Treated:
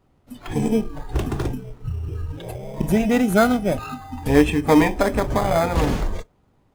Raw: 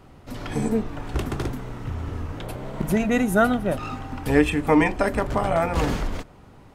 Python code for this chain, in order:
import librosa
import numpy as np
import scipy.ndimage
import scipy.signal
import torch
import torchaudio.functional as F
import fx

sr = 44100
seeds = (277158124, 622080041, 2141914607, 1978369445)

p1 = fx.noise_reduce_blind(x, sr, reduce_db=16)
p2 = fx.sample_hold(p1, sr, seeds[0], rate_hz=2800.0, jitter_pct=0)
y = p1 + (p2 * 10.0 ** (-6.5 / 20.0))